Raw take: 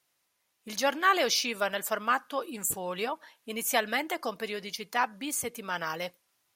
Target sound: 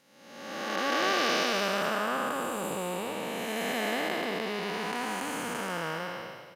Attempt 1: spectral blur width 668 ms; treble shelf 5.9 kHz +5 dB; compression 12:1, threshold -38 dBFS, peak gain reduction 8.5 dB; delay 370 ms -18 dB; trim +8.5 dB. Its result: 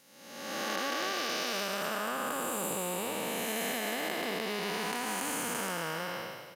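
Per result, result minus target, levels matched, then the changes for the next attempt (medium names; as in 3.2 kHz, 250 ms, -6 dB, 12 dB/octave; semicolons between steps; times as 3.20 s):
compression: peak gain reduction +8.5 dB; 8 kHz band +6.5 dB
remove: compression 12:1, threshold -38 dBFS, peak gain reduction 8.5 dB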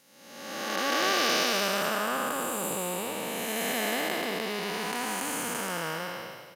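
8 kHz band +5.5 dB
change: treble shelf 5.9 kHz -6.5 dB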